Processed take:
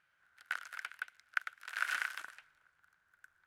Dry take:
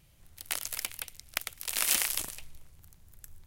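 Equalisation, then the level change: band-pass filter 1.5 kHz, Q 9.8; +12.0 dB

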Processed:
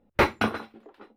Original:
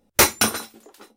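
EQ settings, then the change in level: distance through air 450 m; 0.0 dB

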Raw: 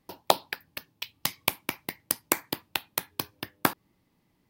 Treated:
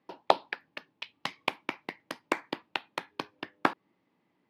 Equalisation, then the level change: band-pass 240–2800 Hz; 0.0 dB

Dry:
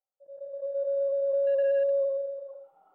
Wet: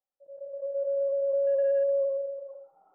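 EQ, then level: low-pass 1.3 kHz 12 dB/octave; 0.0 dB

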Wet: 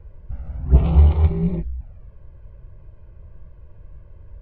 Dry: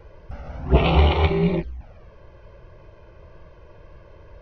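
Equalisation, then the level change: bass shelf 130 Hz +8 dB; dynamic bell 2.6 kHz, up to -7 dB, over -42 dBFS, Q 1.7; tone controls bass +10 dB, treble -11 dB; -11.0 dB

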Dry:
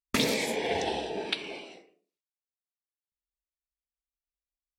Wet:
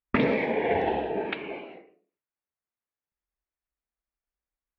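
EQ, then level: low-pass 2.2 kHz 24 dB/octave; +5.0 dB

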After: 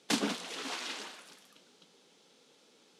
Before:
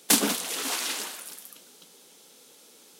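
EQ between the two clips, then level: low-pass 4.9 kHz 12 dB/octave; bass shelf 110 Hz +8 dB; -6.5 dB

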